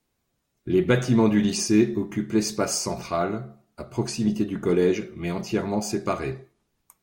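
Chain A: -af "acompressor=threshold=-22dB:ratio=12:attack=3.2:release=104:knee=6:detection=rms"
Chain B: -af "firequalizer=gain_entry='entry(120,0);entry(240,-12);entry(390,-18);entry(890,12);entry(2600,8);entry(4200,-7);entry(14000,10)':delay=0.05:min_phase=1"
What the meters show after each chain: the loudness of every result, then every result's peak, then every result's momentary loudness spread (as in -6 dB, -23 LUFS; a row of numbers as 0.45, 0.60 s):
-30.0, -25.5 LUFS; -16.5, -4.0 dBFS; 8, 12 LU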